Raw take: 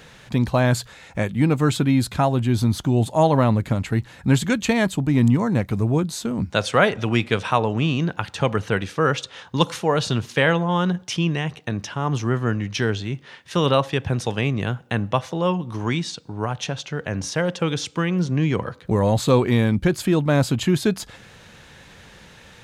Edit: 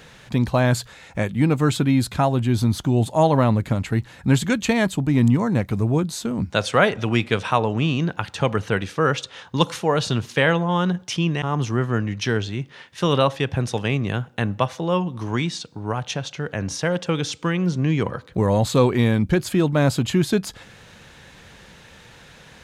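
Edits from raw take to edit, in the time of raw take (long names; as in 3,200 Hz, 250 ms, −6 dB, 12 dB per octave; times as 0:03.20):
0:11.42–0:11.95: remove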